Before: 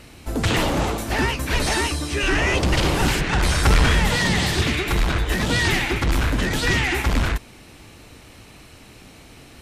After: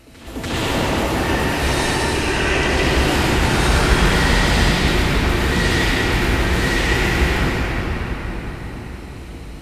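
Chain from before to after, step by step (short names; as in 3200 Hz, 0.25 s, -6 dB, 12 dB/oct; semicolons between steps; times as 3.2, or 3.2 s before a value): low shelf 62 Hz -8.5 dB; reverse echo 0.29 s -17.5 dB; reverb RT60 6.0 s, pre-delay 63 ms, DRR -8.5 dB; gain -5.5 dB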